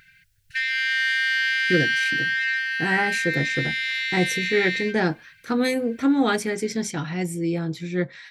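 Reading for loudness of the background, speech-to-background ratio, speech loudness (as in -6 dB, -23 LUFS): -23.0 LUFS, -2.0 dB, -25.0 LUFS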